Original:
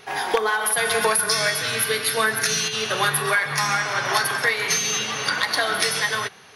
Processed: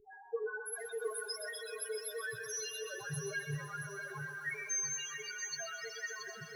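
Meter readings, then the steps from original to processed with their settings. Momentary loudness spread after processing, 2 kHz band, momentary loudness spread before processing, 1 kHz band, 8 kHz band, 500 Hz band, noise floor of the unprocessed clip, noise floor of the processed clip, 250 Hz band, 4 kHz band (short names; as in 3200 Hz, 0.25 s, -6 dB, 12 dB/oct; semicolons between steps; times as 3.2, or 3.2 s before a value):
7 LU, -19.0 dB, 3 LU, -26.0 dB, -15.0 dB, -15.5 dB, -39 dBFS, -52 dBFS, under -15 dB, -22.5 dB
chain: loudest bins only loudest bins 2; reverse; upward compressor, threshold -30 dBFS; reverse; passive tone stack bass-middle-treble 10-0-1; on a send: thinning echo 0.127 s, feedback 81%, high-pass 170 Hz, level -11 dB; on the sum: FDN reverb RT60 0.45 s, low-frequency decay 1.5×, high-frequency decay 0.4×, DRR 17 dB; lo-fi delay 0.677 s, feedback 35%, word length 12-bit, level -7 dB; gain +12.5 dB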